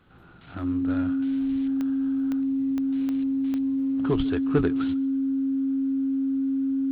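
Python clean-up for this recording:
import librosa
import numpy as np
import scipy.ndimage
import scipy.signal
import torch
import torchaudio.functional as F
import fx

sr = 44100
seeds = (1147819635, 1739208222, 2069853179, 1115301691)

y = fx.fix_declick_ar(x, sr, threshold=10.0)
y = fx.notch(y, sr, hz=270.0, q=30.0)
y = fx.fix_echo_inverse(y, sr, delay_ms=147, level_db=-23.5)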